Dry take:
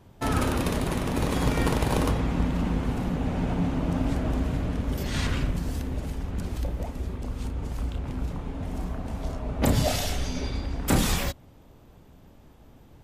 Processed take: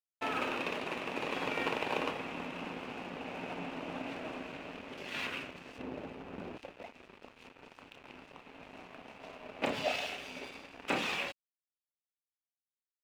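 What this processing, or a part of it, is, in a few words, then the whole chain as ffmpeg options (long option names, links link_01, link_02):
pocket radio on a weak battery: -filter_complex "[0:a]asettb=1/sr,asplit=3[link_01][link_02][link_03];[link_01]atrim=end=5.784[link_04];[link_02]atrim=start=5.78:end=6.58,asetpts=PTS-STARTPTS,afade=type=in:duration=0.004:curve=qsin,afade=type=out:start_time=0.796:duration=0.004:curve=qsin,tiltshelf=frequency=1400:gain=8.5[link_05];[link_03]atrim=start=6.576[link_06];[link_04][link_05]acrossfade=duration=0.004:curve1=hsin:curve2=qsin[link_07];[link_07][link_06]acrossfade=duration=0.004:curve1=qsin:curve2=hsin,highpass=390,lowpass=3500,aeval=exprs='sgn(val(0))*max(abs(val(0))-0.00562,0)':channel_layout=same,equalizer=frequency=2600:width_type=o:width=0.38:gain=11,volume=-4.5dB"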